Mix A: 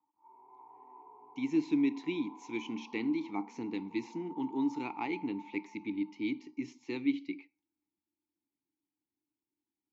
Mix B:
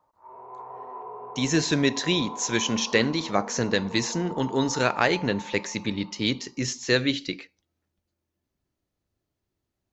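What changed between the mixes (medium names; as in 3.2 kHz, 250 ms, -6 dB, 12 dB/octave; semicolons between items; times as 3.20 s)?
background +3.0 dB; master: remove vowel filter u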